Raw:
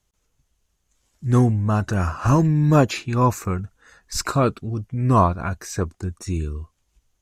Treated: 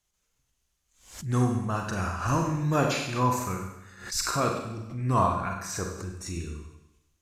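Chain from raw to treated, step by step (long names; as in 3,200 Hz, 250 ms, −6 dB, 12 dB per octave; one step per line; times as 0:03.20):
tilt shelving filter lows −4 dB, about 840 Hz
four-comb reverb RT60 0.9 s, combs from 32 ms, DRR 1.5 dB
background raised ahead of every attack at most 110 dB per second
level −7.5 dB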